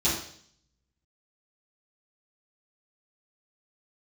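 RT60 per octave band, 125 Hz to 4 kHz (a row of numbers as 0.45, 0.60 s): 0.95, 0.65, 0.60, 0.55, 0.60, 0.70 s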